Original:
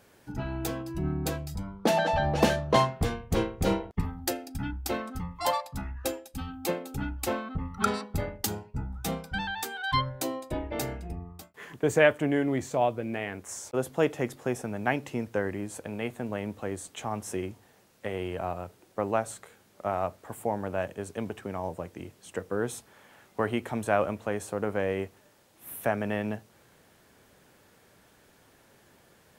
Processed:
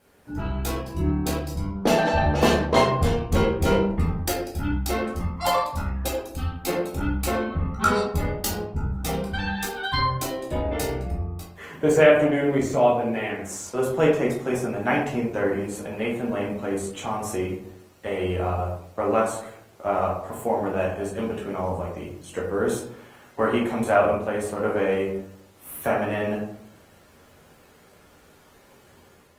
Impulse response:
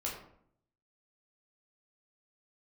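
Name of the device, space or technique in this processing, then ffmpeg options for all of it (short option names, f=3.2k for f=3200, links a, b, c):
speakerphone in a meeting room: -filter_complex "[1:a]atrim=start_sample=2205[a];[0:a][a]afir=irnorm=-1:irlink=0,dynaudnorm=f=120:g=5:m=4dB" -ar 48000 -c:a libopus -b:a 24k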